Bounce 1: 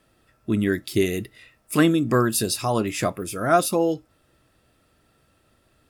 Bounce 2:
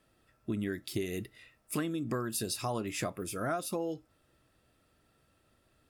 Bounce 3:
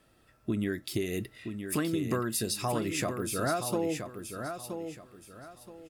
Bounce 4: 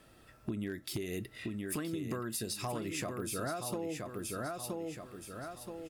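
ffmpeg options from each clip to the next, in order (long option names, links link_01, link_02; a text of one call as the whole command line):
ffmpeg -i in.wav -af "acompressor=threshold=-23dB:ratio=10,volume=-7dB" out.wav
ffmpeg -i in.wav -filter_complex "[0:a]asplit=2[link_01][link_02];[link_02]alimiter=level_in=4dB:limit=-24dB:level=0:latency=1:release=405,volume=-4dB,volume=-2.5dB[link_03];[link_01][link_03]amix=inputs=2:normalize=0,aecho=1:1:973|1946|2919:0.422|0.118|0.0331" out.wav
ffmpeg -i in.wav -af "acompressor=threshold=-41dB:ratio=4,aeval=exprs='0.0237*(abs(mod(val(0)/0.0237+3,4)-2)-1)':channel_layout=same,volume=4.5dB" out.wav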